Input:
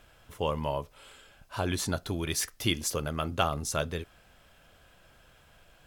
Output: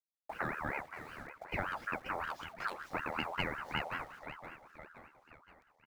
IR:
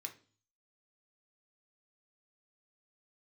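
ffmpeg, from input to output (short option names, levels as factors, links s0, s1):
-filter_complex "[0:a]agate=range=0.0708:threshold=0.00251:ratio=16:detection=peak,lowpass=f=3700:w=0.5412,lowpass=f=3700:w=1.3066,asplit=2[s0][s1];[s1]adynamicsmooth=sensitivity=4:basefreq=620,volume=1.33[s2];[s0][s2]amix=inputs=2:normalize=0,equalizer=f=290:t=o:w=0.75:g=-8,acompressor=threshold=0.00708:ratio=4,highshelf=f=1700:t=q:w=3:g=-6.5,acrusher=bits=10:mix=0:aa=0.000001,aecho=1:1:522|1044|1566|2088|2610:0.299|0.149|0.0746|0.0373|0.0187,aeval=exprs='val(0)*sin(2*PI*1100*n/s+1100*0.4/5.3*sin(2*PI*5.3*n/s))':c=same,volume=2"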